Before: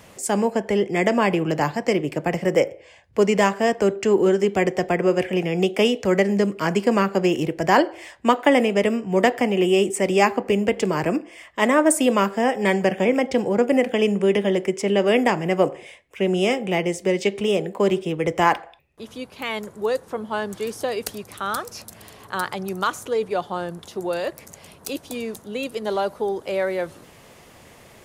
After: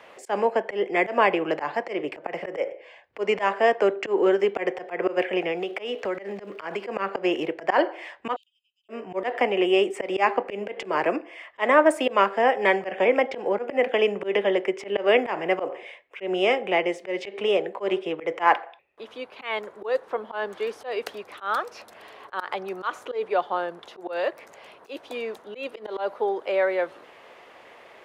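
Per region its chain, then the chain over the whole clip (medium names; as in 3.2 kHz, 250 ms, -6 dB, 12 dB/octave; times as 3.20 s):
5.51–6.81 s: compression 10:1, threshold -21 dBFS + crackle 390 per s -40 dBFS
8.36–8.89 s: steep high-pass 2.8 kHz 96 dB/octave + comb 1.6 ms, depth 46% + inverted gate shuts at -40 dBFS, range -36 dB
whole clip: three-band isolator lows -24 dB, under 360 Hz, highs -21 dB, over 3.5 kHz; slow attack 123 ms; trim +2.5 dB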